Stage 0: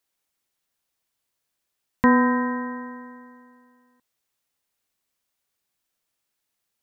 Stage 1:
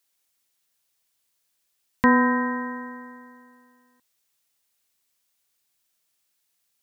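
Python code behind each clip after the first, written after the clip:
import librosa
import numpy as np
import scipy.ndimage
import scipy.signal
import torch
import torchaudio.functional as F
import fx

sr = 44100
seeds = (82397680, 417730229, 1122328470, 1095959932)

y = fx.high_shelf(x, sr, hz=2200.0, db=8.5)
y = y * 10.0 ** (-1.5 / 20.0)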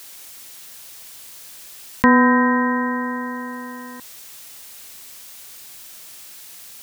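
y = fx.env_flatten(x, sr, amount_pct=50)
y = y * 10.0 ** (3.5 / 20.0)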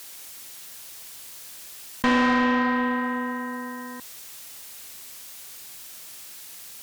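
y = fx.tube_stage(x, sr, drive_db=17.0, bias=0.4)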